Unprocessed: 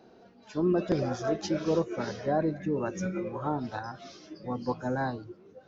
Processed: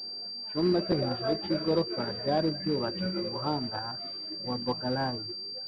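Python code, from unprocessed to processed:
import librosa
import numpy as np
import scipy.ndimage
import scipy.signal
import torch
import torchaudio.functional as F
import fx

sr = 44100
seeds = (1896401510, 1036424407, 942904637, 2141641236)

y = fx.quant_float(x, sr, bits=2)
y = fx.pwm(y, sr, carrier_hz=4700.0)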